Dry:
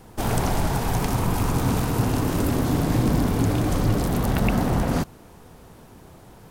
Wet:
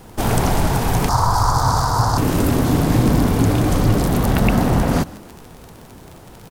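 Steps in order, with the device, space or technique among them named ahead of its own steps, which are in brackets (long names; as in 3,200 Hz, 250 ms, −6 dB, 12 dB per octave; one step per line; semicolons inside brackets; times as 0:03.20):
0:01.09–0:02.18: drawn EQ curve 120 Hz 0 dB, 200 Hz −13 dB, 380 Hz −10 dB, 970 Hz +10 dB, 1,400 Hz +5 dB, 2,600 Hz −19 dB, 4,700 Hz +9 dB, 12,000 Hz −6 dB
echo with shifted repeats 148 ms, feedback 41%, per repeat +41 Hz, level −21 dB
vinyl LP (surface crackle 41 per second −32 dBFS; pink noise bed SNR 38 dB)
level +5.5 dB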